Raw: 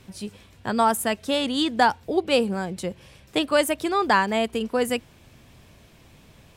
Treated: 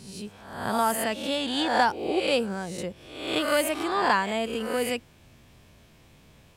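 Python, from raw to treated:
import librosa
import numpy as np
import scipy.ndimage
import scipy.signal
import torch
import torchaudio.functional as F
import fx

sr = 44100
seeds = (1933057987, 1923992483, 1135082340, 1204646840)

y = fx.spec_swells(x, sr, rise_s=0.78)
y = F.gain(torch.from_numpy(y), -5.5).numpy()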